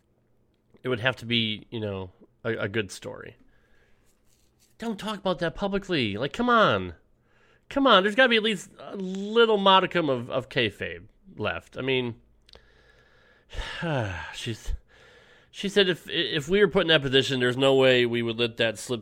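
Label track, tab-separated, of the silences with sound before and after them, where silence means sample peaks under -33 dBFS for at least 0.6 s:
3.290000	4.820000	silence
6.900000	7.710000	silence
12.550000	13.530000	silence
14.750000	15.580000	silence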